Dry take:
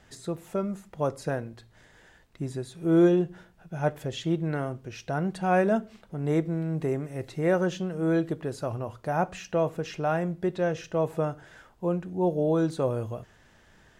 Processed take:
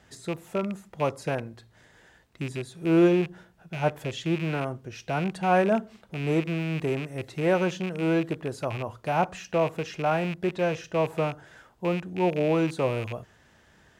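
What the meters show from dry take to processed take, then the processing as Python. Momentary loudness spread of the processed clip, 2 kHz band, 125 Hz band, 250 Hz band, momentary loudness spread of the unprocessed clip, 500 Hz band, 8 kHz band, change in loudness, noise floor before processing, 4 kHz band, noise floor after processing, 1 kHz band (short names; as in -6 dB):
11 LU, +4.0 dB, 0.0 dB, 0.0 dB, 11 LU, +0.5 dB, +0.5 dB, +1.0 dB, -59 dBFS, +4.5 dB, -60 dBFS, +2.5 dB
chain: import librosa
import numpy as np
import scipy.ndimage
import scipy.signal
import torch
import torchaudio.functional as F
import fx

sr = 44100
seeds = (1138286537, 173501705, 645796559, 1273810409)

y = fx.rattle_buzz(x, sr, strikes_db=-34.0, level_db=-27.0)
y = scipy.signal.sosfilt(scipy.signal.butter(2, 50.0, 'highpass', fs=sr, output='sos'), y)
y = fx.dynamic_eq(y, sr, hz=940.0, q=1.7, threshold_db=-41.0, ratio=4.0, max_db=4)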